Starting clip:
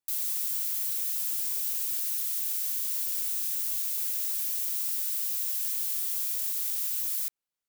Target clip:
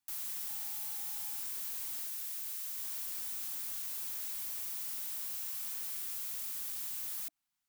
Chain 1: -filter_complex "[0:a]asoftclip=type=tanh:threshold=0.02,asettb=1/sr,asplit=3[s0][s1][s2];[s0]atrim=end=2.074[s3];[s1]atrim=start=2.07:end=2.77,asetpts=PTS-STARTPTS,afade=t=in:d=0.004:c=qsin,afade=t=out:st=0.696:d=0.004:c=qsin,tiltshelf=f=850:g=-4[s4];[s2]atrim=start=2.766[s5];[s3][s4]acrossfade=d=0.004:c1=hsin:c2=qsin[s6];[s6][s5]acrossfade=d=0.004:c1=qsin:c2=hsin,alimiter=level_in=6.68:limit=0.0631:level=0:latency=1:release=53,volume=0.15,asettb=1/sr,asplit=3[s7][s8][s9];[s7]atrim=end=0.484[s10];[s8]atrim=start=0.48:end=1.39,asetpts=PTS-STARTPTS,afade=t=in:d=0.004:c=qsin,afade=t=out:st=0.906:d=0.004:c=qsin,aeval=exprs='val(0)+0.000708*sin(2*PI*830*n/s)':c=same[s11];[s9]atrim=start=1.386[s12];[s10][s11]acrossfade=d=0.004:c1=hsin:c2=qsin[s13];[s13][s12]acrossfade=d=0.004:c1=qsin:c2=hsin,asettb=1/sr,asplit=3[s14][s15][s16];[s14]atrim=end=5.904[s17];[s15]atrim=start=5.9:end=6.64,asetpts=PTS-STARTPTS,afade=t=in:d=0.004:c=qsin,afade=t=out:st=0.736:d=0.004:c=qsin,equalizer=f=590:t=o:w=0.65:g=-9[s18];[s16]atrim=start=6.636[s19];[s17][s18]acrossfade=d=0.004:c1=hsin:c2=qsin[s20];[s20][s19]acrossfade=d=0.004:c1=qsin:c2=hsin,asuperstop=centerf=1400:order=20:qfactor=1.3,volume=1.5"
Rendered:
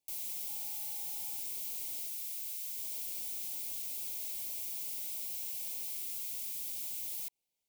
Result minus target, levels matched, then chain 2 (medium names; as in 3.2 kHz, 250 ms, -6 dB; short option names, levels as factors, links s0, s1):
500 Hz band +10.5 dB
-filter_complex "[0:a]asoftclip=type=tanh:threshold=0.02,asettb=1/sr,asplit=3[s0][s1][s2];[s0]atrim=end=2.074[s3];[s1]atrim=start=2.07:end=2.77,asetpts=PTS-STARTPTS,afade=t=in:d=0.004:c=qsin,afade=t=out:st=0.696:d=0.004:c=qsin,tiltshelf=f=850:g=-4[s4];[s2]atrim=start=2.766[s5];[s3][s4]acrossfade=d=0.004:c1=hsin:c2=qsin[s6];[s6][s5]acrossfade=d=0.004:c1=qsin:c2=hsin,alimiter=level_in=6.68:limit=0.0631:level=0:latency=1:release=53,volume=0.15,asettb=1/sr,asplit=3[s7][s8][s9];[s7]atrim=end=0.484[s10];[s8]atrim=start=0.48:end=1.39,asetpts=PTS-STARTPTS,afade=t=in:d=0.004:c=qsin,afade=t=out:st=0.906:d=0.004:c=qsin,aeval=exprs='val(0)+0.000708*sin(2*PI*830*n/s)':c=same[s11];[s9]atrim=start=1.386[s12];[s10][s11]acrossfade=d=0.004:c1=hsin:c2=qsin[s13];[s13][s12]acrossfade=d=0.004:c1=qsin:c2=hsin,asettb=1/sr,asplit=3[s14][s15][s16];[s14]atrim=end=5.904[s17];[s15]atrim=start=5.9:end=6.64,asetpts=PTS-STARTPTS,afade=t=in:d=0.004:c=qsin,afade=t=out:st=0.736:d=0.004:c=qsin,equalizer=f=590:t=o:w=0.65:g=-9[s18];[s16]atrim=start=6.636[s19];[s17][s18]acrossfade=d=0.004:c1=hsin:c2=qsin[s20];[s20][s19]acrossfade=d=0.004:c1=qsin:c2=hsin,asuperstop=centerf=460:order=20:qfactor=1.3,volume=1.5"